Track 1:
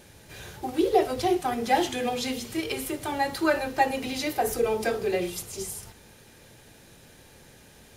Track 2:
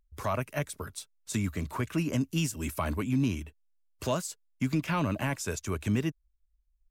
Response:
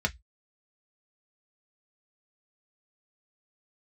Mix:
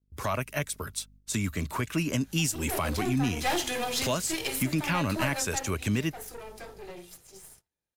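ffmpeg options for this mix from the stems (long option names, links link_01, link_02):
-filter_complex "[0:a]highshelf=frequency=2600:gain=4.5,aeval=exprs='(tanh(17.8*val(0)+0.75)-tanh(0.75))/17.8':channel_layout=same,adelay=1750,volume=-0.5dB,afade=type=in:start_time=2.57:duration=0.32:silence=0.237137,afade=type=out:start_time=5.34:duration=0.38:silence=0.237137,asplit=2[link_01][link_02];[link_02]volume=-18.5dB[link_03];[1:a]alimiter=limit=-21.5dB:level=0:latency=1:release=368,aeval=exprs='val(0)+0.00126*(sin(2*PI*50*n/s)+sin(2*PI*2*50*n/s)/2+sin(2*PI*3*50*n/s)/3+sin(2*PI*4*50*n/s)/4+sin(2*PI*5*50*n/s)/5)':channel_layout=same,volume=2.5dB,asplit=2[link_04][link_05];[link_05]apad=whole_len=428405[link_06];[link_01][link_06]sidechaincompress=threshold=-35dB:ratio=4:attack=16:release=129[link_07];[2:a]atrim=start_sample=2205[link_08];[link_03][link_08]afir=irnorm=-1:irlink=0[link_09];[link_07][link_04][link_09]amix=inputs=3:normalize=0,agate=range=-24dB:threshold=-54dB:ratio=16:detection=peak,adynamicequalizer=threshold=0.00631:dfrequency=1600:dqfactor=0.7:tfrequency=1600:tqfactor=0.7:attack=5:release=100:ratio=0.375:range=3:mode=boostabove:tftype=highshelf"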